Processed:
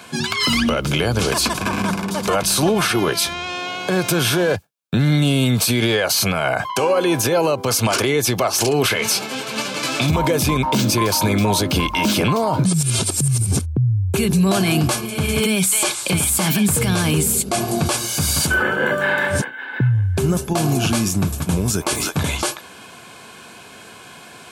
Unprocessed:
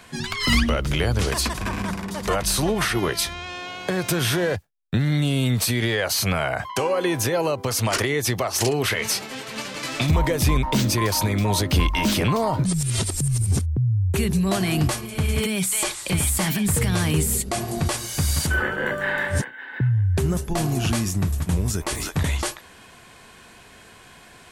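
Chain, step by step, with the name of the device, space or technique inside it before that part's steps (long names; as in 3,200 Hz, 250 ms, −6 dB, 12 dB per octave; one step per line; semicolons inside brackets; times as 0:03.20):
PA system with an anti-feedback notch (high-pass filter 130 Hz 12 dB per octave; Butterworth band-reject 1,900 Hz, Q 6.8; brickwall limiter −16.5 dBFS, peak gain reduction 6.5 dB)
level +7.5 dB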